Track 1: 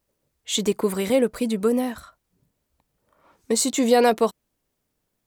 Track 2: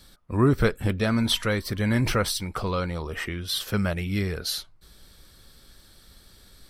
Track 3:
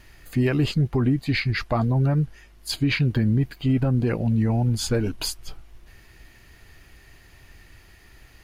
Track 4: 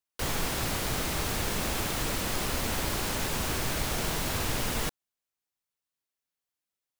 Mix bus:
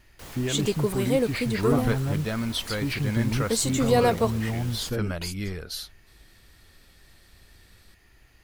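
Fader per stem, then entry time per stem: -4.0, -5.5, -7.0, -12.5 dB; 0.00, 1.25, 0.00, 0.00 s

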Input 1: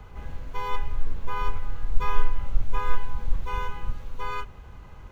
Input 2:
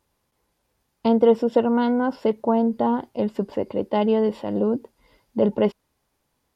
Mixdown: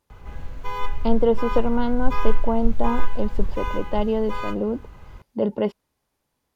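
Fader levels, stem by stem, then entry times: +1.5, -3.0 dB; 0.10, 0.00 s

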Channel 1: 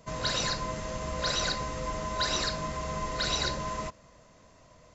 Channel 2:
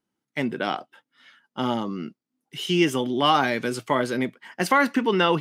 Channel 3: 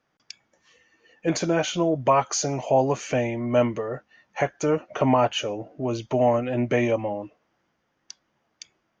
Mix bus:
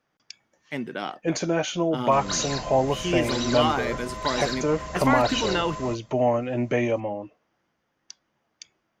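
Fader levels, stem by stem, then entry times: -1.5, -5.0, -1.5 dB; 2.05, 0.35, 0.00 s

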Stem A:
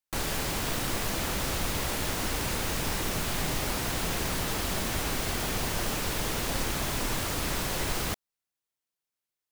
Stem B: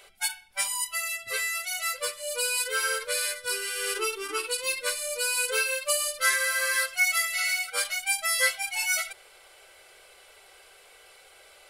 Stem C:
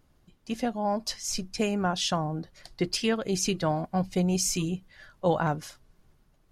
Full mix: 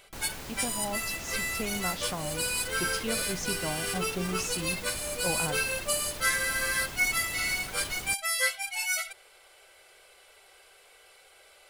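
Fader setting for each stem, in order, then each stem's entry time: -10.5, -3.0, -8.0 dB; 0.00, 0.00, 0.00 s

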